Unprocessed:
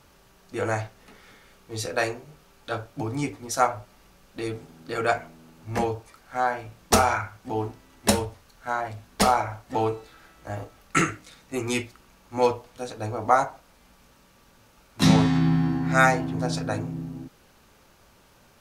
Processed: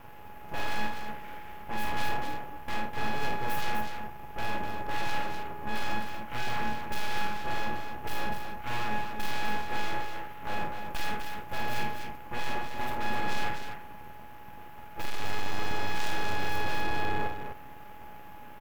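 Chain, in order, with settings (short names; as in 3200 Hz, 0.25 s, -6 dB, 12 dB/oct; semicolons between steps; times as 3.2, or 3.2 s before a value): low shelf 300 Hz +6.5 dB; ring modulator 420 Hz; full-wave rectifier; band shelf 6100 Hz -13.5 dB; hard clip -35 dBFS, distortion 0 dB; on a send: tapped delay 50/250 ms -6.5/-6 dB; on the sum: gain +8.5 dB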